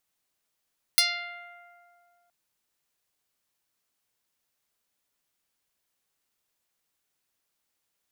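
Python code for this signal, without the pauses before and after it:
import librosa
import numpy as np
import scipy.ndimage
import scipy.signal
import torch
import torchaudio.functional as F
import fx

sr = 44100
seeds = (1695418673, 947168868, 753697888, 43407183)

y = fx.pluck(sr, length_s=1.32, note=77, decay_s=2.62, pick=0.09, brightness='medium')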